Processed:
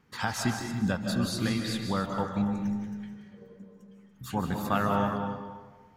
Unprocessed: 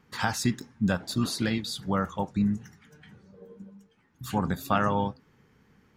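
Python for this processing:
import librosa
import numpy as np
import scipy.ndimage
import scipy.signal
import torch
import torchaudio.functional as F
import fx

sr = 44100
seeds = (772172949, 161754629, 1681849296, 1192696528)

y = x + 10.0 ** (-13.0 / 20.0) * np.pad(x, (int(286 * sr / 1000.0), 0))[:len(x)]
y = fx.rev_freeverb(y, sr, rt60_s=1.3, hf_ratio=0.55, predelay_ms=115, drr_db=3.0)
y = y * 10.0 ** (-3.0 / 20.0)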